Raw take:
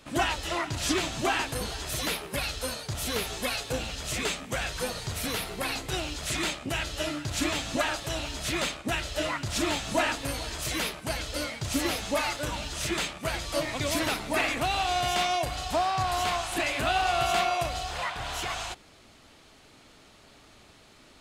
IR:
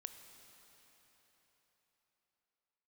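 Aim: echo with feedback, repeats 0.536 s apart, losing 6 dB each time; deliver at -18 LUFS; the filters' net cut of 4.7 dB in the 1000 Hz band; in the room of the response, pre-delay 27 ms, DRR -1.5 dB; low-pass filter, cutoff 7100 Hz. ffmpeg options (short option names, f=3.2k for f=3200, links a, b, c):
-filter_complex "[0:a]lowpass=7.1k,equalizer=f=1k:t=o:g=-7.5,aecho=1:1:536|1072|1608|2144|2680|3216:0.501|0.251|0.125|0.0626|0.0313|0.0157,asplit=2[a][b];[1:a]atrim=start_sample=2205,adelay=27[c];[b][c]afir=irnorm=-1:irlink=0,volume=6dB[d];[a][d]amix=inputs=2:normalize=0,volume=8.5dB"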